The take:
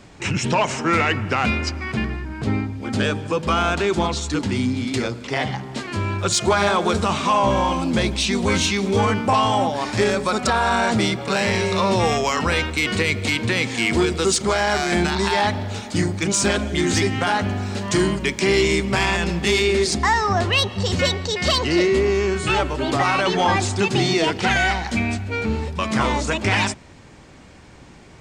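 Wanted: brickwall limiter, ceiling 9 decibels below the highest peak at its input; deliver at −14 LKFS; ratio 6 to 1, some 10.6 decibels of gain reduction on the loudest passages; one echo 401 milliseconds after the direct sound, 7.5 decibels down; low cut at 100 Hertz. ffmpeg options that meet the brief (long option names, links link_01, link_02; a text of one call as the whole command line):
ffmpeg -i in.wav -af "highpass=100,acompressor=threshold=-26dB:ratio=6,alimiter=limit=-22dB:level=0:latency=1,aecho=1:1:401:0.422,volume=16dB" out.wav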